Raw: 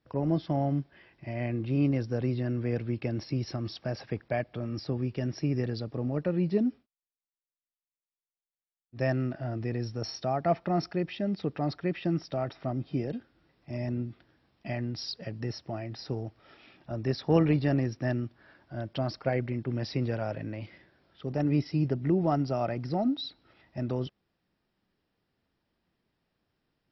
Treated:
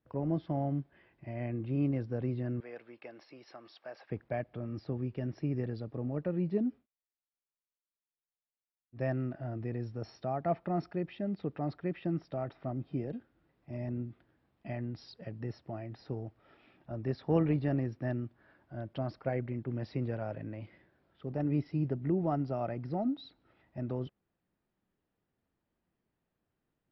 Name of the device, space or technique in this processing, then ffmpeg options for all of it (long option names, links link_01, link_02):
phone in a pocket: -filter_complex "[0:a]lowpass=3900,highshelf=frequency=2500:gain=-8.5,asettb=1/sr,asplit=3[link_01][link_02][link_03];[link_01]atrim=end=2.604[link_04];[link_02]atrim=start=2.6:end=4.1,asetpts=PTS-STARTPTS,afade=type=in:duration=0.004:curve=qsin,afade=type=out:start_time=1.496:duration=0.004:curve=qsin,highpass=690[link_05];[link_03]atrim=start=4.096[link_06];[link_04][link_05]acrossfade=duration=0.004:curve1=hsin:curve2=qsin[link_07];[link_07][link_06]acrossfade=duration=0.004:curve1=qsin:curve2=hsin,volume=-4.5dB"